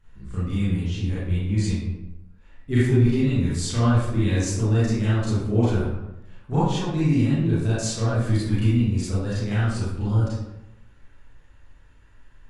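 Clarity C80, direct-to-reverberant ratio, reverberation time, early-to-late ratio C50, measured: 2.0 dB, -11.5 dB, 0.90 s, -3.5 dB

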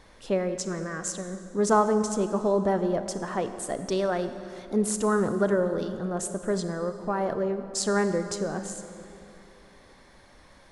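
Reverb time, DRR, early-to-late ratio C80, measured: 2.9 s, 9.0 dB, 10.5 dB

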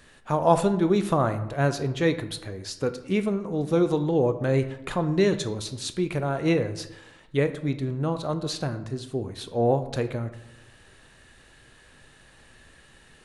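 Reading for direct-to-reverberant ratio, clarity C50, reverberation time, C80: 9.5 dB, 13.0 dB, 0.90 s, 15.0 dB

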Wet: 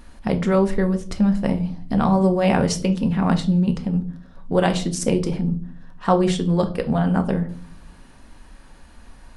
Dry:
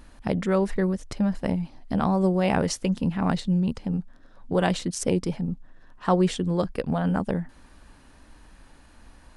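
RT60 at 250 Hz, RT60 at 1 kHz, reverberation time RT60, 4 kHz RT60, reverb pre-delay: 0.85 s, 0.35 s, 0.45 s, 0.35 s, 4 ms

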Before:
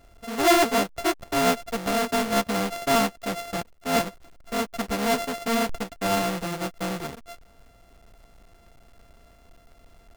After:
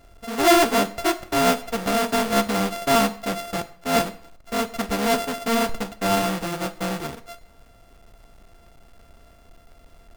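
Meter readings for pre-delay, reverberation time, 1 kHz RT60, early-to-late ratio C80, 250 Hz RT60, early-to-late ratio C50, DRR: 14 ms, 0.55 s, 0.60 s, 19.0 dB, 0.50 s, 16.0 dB, 11.5 dB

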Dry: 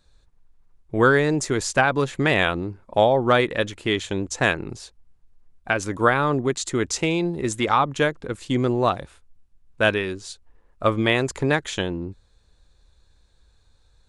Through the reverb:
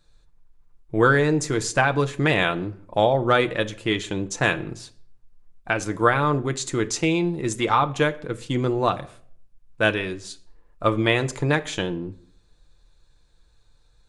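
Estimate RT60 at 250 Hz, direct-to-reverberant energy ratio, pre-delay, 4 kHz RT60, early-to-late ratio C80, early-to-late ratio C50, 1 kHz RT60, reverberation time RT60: 0.65 s, 7.0 dB, 6 ms, 0.40 s, 22.0 dB, 18.5 dB, 0.55 s, 0.55 s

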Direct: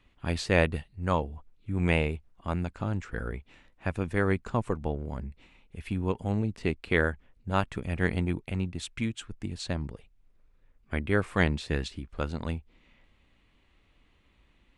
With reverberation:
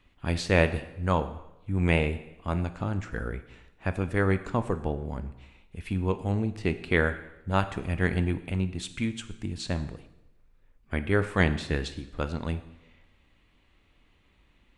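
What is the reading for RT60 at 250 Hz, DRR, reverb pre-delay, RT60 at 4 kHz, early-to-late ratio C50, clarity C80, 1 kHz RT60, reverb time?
0.85 s, 10.0 dB, 6 ms, 0.85 s, 13.0 dB, 15.0 dB, 0.90 s, 0.90 s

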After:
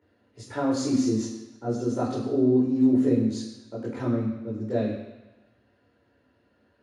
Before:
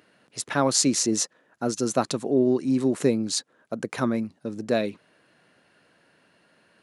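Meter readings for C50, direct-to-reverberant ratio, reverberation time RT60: 4.0 dB, -7.5 dB, 1.0 s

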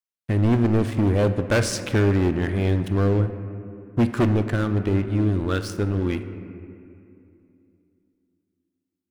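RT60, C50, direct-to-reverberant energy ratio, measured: 2.6 s, 10.0 dB, 8.5 dB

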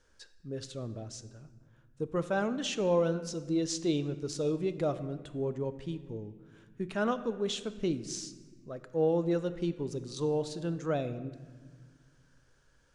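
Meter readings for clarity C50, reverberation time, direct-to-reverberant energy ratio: 13.0 dB, 1.5 s, 11.5 dB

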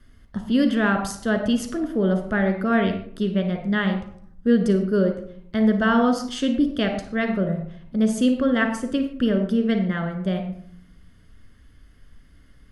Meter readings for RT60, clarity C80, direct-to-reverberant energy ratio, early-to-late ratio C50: 0.65 s, 10.0 dB, 5.0 dB, 7.0 dB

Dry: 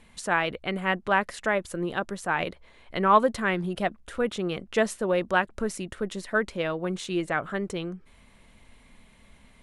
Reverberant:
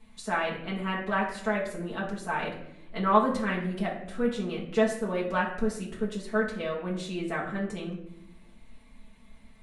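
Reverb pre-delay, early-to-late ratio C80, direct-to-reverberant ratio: 4 ms, 10.0 dB, -6.5 dB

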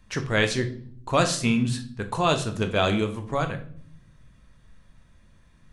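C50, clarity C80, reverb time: 13.0 dB, 17.0 dB, 0.60 s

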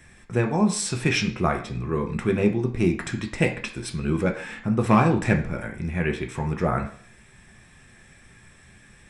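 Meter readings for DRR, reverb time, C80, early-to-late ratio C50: 2.5 dB, 0.50 s, 14.5 dB, 10.5 dB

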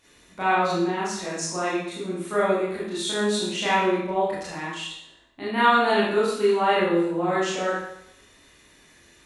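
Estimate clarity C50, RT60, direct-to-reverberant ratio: 0.0 dB, 0.75 s, -9.5 dB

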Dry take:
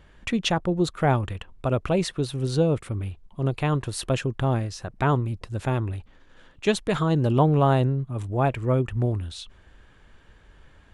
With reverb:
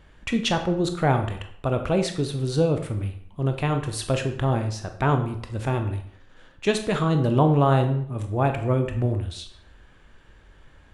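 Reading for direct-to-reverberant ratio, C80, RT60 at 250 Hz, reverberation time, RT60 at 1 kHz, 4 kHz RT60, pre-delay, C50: 6.0 dB, 12.5 dB, 0.55 s, 0.65 s, 0.65 s, 0.50 s, 19 ms, 9.0 dB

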